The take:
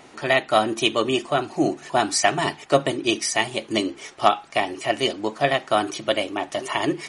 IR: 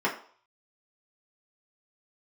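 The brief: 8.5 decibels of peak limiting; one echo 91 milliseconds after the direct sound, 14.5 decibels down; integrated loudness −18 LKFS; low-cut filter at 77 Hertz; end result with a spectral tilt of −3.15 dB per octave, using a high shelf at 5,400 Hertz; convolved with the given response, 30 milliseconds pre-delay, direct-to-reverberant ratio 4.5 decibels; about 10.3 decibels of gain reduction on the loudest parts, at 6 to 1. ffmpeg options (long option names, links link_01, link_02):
-filter_complex "[0:a]highpass=77,highshelf=frequency=5400:gain=3,acompressor=threshold=-23dB:ratio=6,alimiter=limit=-17dB:level=0:latency=1,aecho=1:1:91:0.188,asplit=2[link_01][link_02];[1:a]atrim=start_sample=2205,adelay=30[link_03];[link_02][link_03]afir=irnorm=-1:irlink=0,volume=-16.5dB[link_04];[link_01][link_04]amix=inputs=2:normalize=0,volume=11dB"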